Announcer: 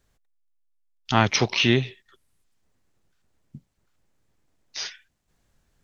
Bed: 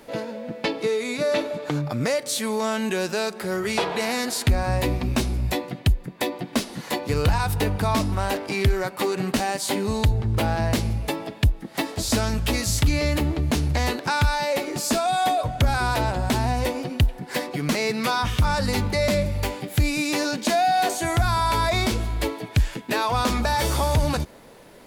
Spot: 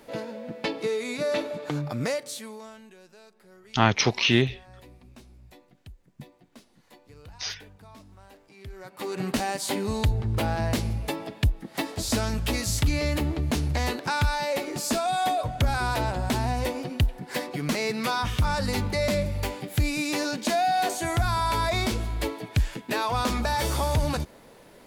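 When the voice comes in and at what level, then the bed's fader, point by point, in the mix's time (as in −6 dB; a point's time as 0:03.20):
2.65 s, −1.0 dB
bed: 0:02.10 −4 dB
0:02.95 −27 dB
0:08.53 −27 dB
0:09.22 −3.5 dB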